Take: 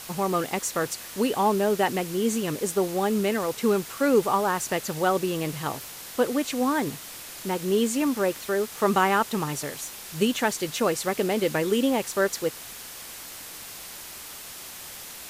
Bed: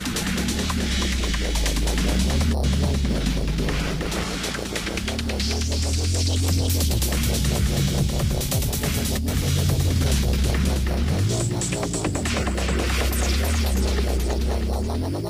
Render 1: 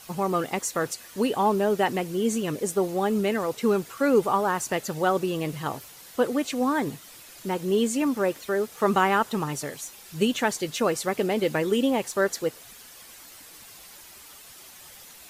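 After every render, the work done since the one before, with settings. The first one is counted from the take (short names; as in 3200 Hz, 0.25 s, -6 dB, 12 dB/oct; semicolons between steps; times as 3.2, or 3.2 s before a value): denoiser 9 dB, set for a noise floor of -41 dBFS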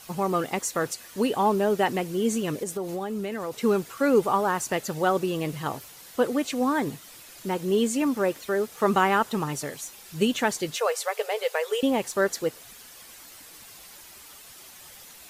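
2.63–3.59 compressor, threshold -27 dBFS; 10.76–11.83 brick-wall FIR high-pass 410 Hz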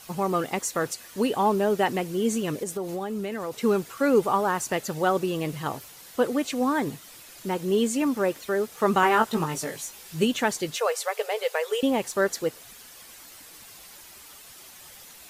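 9.01–10.24 doubler 18 ms -4 dB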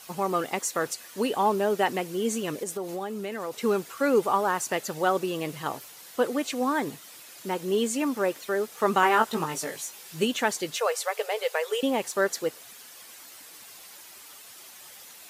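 HPF 290 Hz 6 dB/oct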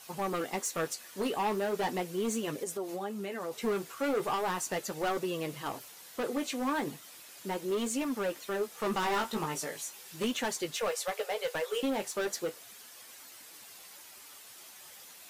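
hard clip -23.5 dBFS, distortion -9 dB; flange 0.38 Hz, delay 7.2 ms, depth 8.1 ms, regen -43%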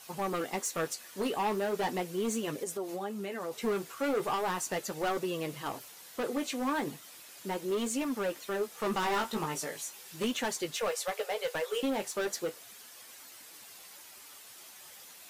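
nothing audible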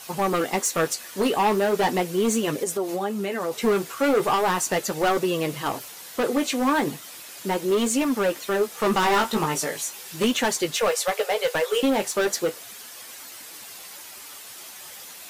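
gain +10 dB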